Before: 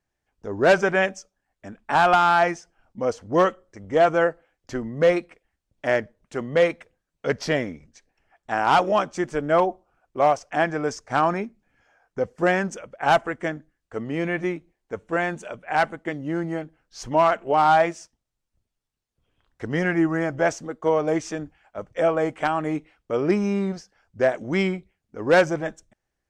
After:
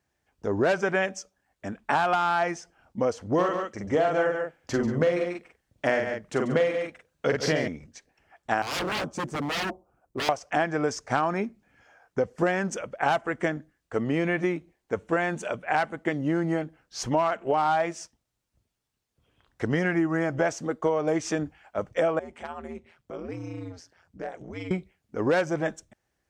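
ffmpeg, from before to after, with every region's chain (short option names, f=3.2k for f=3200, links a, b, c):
-filter_complex "[0:a]asettb=1/sr,asplit=3[a][b][c];[a]atrim=end=3.344[d];[b]atrim=start=3.34:end=7.68,asetpts=PTS-STARTPTS,afade=t=in:d=0.004:c=qsin,afade=t=out:st=4.336:d=0.004:c=qsin,asplit=2[e][f];[f]adelay=45,volume=-3dB[g];[e][g]amix=inputs=2:normalize=0,atrim=end_sample=191394,aecho=1:1:140:0.299,atrim=end_sample=191394[h];[c]atrim=start=7.676[i];[d][h]acrossfade=d=0.004:c1=hsin:c2=qsin[j];[j][i]acrossfade=d=0.004:c1=qsin:c2=hsin,asettb=1/sr,asplit=3[k][l][m];[k]atrim=end=8.624[n];[l]atrim=start=8.62:end=10.29,asetpts=PTS-STARTPTS,afade=t=in:d=0.004:c=qsin,afade=t=out:st=1.666:d=0.004:c=qsin,equalizer=f=2.7k:w=0.42:g=-13.5,aeval=exprs='0.0376*(abs(mod(val(0)/0.0376+3,4)-2)-1)':c=same[o];[m]atrim=start=10.286[p];[n][o]acrossfade=d=0.004:c1=hsin:c2=qsin[q];[q][p]acrossfade=d=0.004:c1=qsin:c2=hsin,asettb=1/sr,asplit=3[r][s][t];[r]atrim=end=22.194[u];[s]atrim=start=22.19:end=24.71,asetpts=PTS-STARTPTS,afade=t=in:d=0.004:c=qsin,afade=t=out:st=2.516:d=0.004:c=qsin,acompressor=threshold=-48dB:ratio=2:attack=3.2:release=140:knee=1:detection=peak,aeval=exprs='val(0)*sin(2*PI*86*n/s)':c=same[v];[t]atrim=start=24.706[w];[u][v]acrossfade=d=0.004:c1=hsin:c2=qsin[x];[x][w]acrossfade=d=0.004:c1=qsin:c2=hsin,highpass=53,acompressor=threshold=-26dB:ratio=6,volume=4.5dB"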